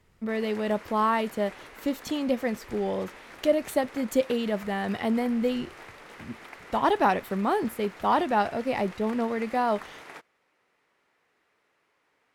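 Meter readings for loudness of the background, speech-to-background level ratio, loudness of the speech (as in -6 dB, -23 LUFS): -45.5 LUFS, 18.0 dB, -27.5 LUFS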